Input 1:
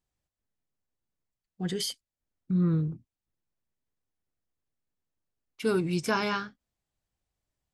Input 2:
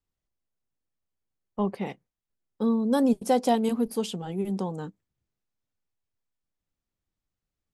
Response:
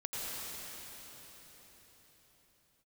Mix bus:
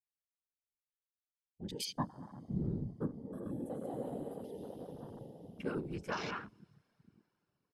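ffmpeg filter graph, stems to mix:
-filter_complex "[0:a]volume=0.473,asplit=3[s0][s1][s2];[s1]volume=0.1[s3];[1:a]highshelf=f=9500:g=11,asplit=2[s4][s5];[s5]afreqshift=0.3[s6];[s4][s6]amix=inputs=2:normalize=1,adelay=400,volume=0.841,asplit=2[s7][s8];[s8]volume=0.224[s9];[s2]apad=whole_len=358747[s10];[s7][s10]sidechaingate=range=0.0501:threshold=0.00178:ratio=16:detection=peak[s11];[2:a]atrim=start_sample=2205[s12];[s3][s9]amix=inputs=2:normalize=0[s13];[s13][s12]afir=irnorm=-1:irlink=0[s14];[s0][s11][s14]amix=inputs=3:normalize=0,highshelf=f=2700:g=6.5,afftfilt=real='hypot(re,im)*cos(2*PI*random(0))':imag='hypot(re,im)*sin(2*PI*random(1))':win_size=512:overlap=0.75,afwtdn=0.00398"

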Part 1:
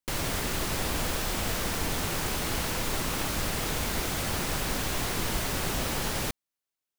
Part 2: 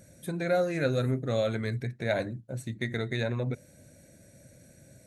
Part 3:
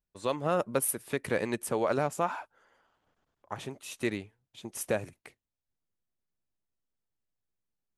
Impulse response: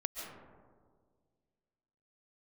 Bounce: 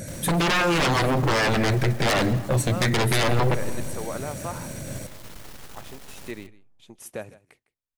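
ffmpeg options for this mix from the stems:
-filter_complex "[0:a]acrusher=bits=4:dc=4:mix=0:aa=0.000001,volume=0.237,asplit=3[s0][s1][s2];[s1]volume=0.0944[s3];[s2]volume=0.501[s4];[1:a]acompressor=threshold=0.0251:ratio=1.5,aeval=exprs='0.106*sin(PI/2*5.01*val(0)/0.106)':c=same,volume=0.944,asplit=2[s5][s6];[s6]volume=0.282[s7];[2:a]adelay=2250,volume=0.562,asplit=2[s8][s9];[s9]volume=0.119[s10];[3:a]atrim=start_sample=2205[s11];[s3][s7]amix=inputs=2:normalize=0[s12];[s12][s11]afir=irnorm=-1:irlink=0[s13];[s4][s10]amix=inputs=2:normalize=0,aecho=0:1:156:1[s14];[s0][s5][s8][s13][s14]amix=inputs=5:normalize=0"

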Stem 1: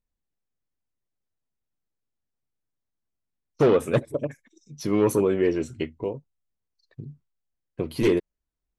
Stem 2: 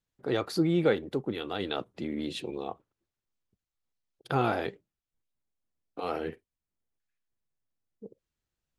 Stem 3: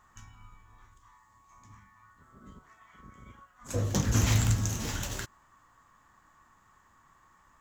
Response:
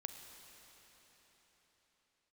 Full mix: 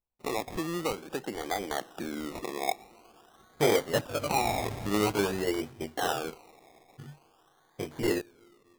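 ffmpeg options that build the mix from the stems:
-filter_complex "[0:a]flanger=delay=19:depth=2.6:speed=0.23,volume=0.501,asplit=2[s0][s1];[s1]volume=0.141[s2];[1:a]highpass=170,agate=range=0.0224:threshold=0.00126:ratio=3:detection=peak,acompressor=threshold=0.01:ratio=3,volume=1.33,asplit=2[s3][s4];[s4]volume=0.355[s5];[2:a]lowshelf=f=240:g=-7,adelay=350,volume=0.335[s6];[3:a]atrim=start_sample=2205[s7];[s2][s5]amix=inputs=2:normalize=0[s8];[s8][s7]afir=irnorm=-1:irlink=0[s9];[s0][s3][s6][s9]amix=inputs=4:normalize=0,equalizer=f=780:w=2.1:g=12,acrusher=samples=23:mix=1:aa=0.000001:lfo=1:lforange=13.8:lforate=0.48"

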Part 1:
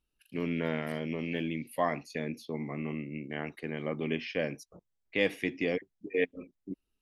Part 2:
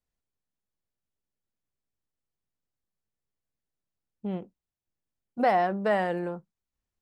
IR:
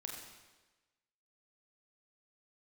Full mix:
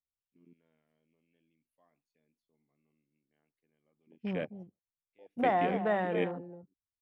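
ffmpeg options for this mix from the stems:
-filter_complex "[0:a]equalizer=f=1900:t=o:w=0.23:g=-5.5,volume=0.631[s0];[1:a]equalizer=f=95:t=o:w=0.89:g=12,volume=0.562,asplit=3[s1][s2][s3];[s2]volume=0.282[s4];[s3]apad=whole_len=309230[s5];[s0][s5]sidechaingate=range=0.0794:threshold=0.00891:ratio=16:detection=peak[s6];[s4]aecho=0:1:265:1[s7];[s6][s1][s7]amix=inputs=3:normalize=0,afwtdn=0.00708"

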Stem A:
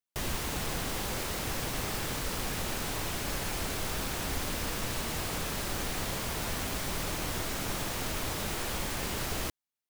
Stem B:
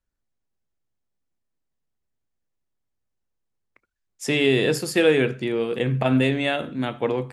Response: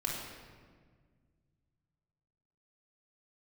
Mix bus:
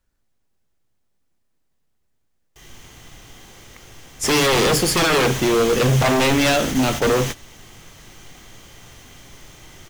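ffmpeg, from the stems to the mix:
-filter_complex "[0:a]equalizer=f=2000:t=o:w=0.33:g=5,equalizer=f=3150:t=o:w=0.33:g=8,equalizer=f=6300:t=o:w=0.33:g=10,adelay=2400,volume=0.668,asplit=2[s0][s1];[s1]volume=0.0841[s2];[1:a]volume=1.41,asplit=2[s3][s4];[s4]apad=whole_len=542319[s5];[s0][s5]sidechaingate=range=0.0224:threshold=0.0282:ratio=16:detection=peak[s6];[2:a]atrim=start_sample=2205[s7];[s2][s7]afir=irnorm=-1:irlink=0[s8];[s6][s3][s8]amix=inputs=3:normalize=0,acontrast=88,aeval=exprs='0.266*(abs(mod(val(0)/0.266+3,4)-2)-1)':c=same"

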